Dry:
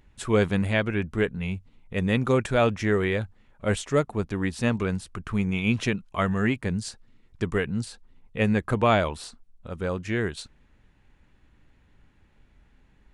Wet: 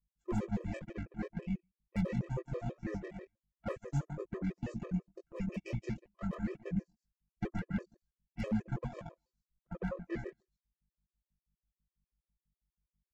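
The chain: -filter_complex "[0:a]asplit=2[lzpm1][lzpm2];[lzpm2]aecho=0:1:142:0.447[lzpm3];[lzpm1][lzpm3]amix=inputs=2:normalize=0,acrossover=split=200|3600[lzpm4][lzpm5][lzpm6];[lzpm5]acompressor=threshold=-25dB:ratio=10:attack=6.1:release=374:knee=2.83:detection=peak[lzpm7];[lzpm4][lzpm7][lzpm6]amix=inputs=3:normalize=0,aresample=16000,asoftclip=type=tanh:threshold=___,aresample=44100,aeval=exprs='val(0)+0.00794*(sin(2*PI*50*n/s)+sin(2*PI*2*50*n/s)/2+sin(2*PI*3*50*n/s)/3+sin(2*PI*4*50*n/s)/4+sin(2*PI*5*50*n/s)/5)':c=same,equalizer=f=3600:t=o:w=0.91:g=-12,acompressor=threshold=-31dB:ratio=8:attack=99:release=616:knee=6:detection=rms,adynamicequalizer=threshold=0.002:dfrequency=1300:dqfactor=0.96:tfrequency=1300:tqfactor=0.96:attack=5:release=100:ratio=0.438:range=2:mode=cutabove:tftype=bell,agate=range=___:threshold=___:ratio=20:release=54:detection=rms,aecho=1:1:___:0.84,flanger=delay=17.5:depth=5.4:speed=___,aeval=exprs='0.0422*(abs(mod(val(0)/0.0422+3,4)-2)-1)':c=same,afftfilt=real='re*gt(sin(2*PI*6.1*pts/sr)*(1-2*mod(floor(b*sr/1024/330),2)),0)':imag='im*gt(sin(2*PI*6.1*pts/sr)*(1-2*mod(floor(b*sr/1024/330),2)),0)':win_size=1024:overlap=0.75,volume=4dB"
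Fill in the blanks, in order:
-24dB, -43dB, -33dB, 5.7, 2.1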